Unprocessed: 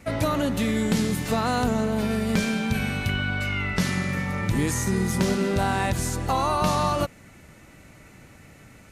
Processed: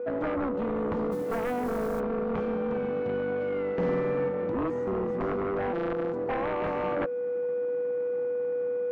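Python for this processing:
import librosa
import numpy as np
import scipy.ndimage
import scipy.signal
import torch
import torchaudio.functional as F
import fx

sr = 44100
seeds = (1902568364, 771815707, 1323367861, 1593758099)

y = fx.sample_sort(x, sr, block=256, at=(5.72, 6.12), fade=0.02)
y = y + 10.0 ** (-28.0 / 20.0) * np.sin(2.0 * np.pi * 490.0 * np.arange(len(y)) / sr)
y = np.sign(y) * np.maximum(np.abs(y) - 10.0 ** (-37.0 / 20.0), 0.0)
y = fx.ladder_bandpass(y, sr, hz=420.0, resonance_pct=25)
y = fx.mod_noise(y, sr, seeds[0], snr_db=27, at=(1.11, 1.99), fade=0.02)
y = fx.fold_sine(y, sr, drive_db=10, ceiling_db=-24.5)
y = fx.rider(y, sr, range_db=10, speed_s=0.5)
y = fx.room_flutter(y, sr, wall_m=8.7, rt60_s=0.93, at=(3.74, 4.29))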